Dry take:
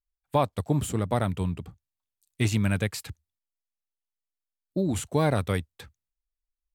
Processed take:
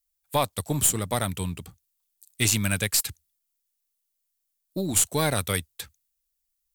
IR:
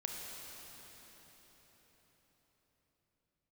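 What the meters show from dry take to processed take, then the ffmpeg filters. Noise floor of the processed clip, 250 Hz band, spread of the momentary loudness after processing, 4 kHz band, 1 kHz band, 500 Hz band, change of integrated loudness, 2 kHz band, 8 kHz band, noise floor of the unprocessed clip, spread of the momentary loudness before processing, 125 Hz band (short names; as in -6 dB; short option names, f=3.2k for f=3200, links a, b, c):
-79 dBFS, -2.5 dB, 15 LU, +9.0 dB, 0.0 dB, -1.5 dB, +3.0 dB, +4.5 dB, +15.5 dB, under -85 dBFS, 13 LU, -2.5 dB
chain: -af "crystalizer=i=6.5:c=0,aeval=exprs='0.631*(cos(1*acos(clip(val(0)/0.631,-1,1)))-cos(1*PI/2))+0.0562*(cos(3*acos(clip(val(0)/0.631,-1,1)))-cos(3*PI/2))+0.0355*(cos(4*acos(clip(val(0)/0.631,-1,1)))-cos(4*PI/2))':c=same"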